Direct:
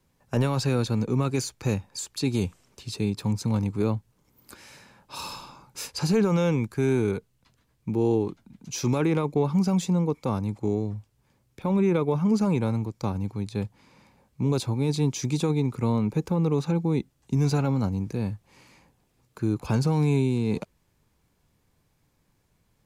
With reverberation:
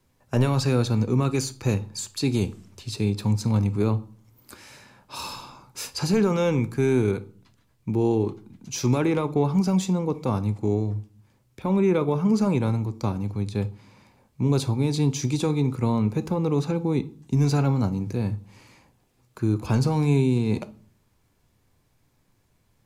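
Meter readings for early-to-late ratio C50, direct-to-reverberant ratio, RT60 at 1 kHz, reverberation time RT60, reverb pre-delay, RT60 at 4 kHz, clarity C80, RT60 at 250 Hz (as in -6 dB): 18.5 dB, 11.0 dB, 0.45 s, 0.45 s, 3 ms, 0.35 s, 24.0 dB, 0.65 s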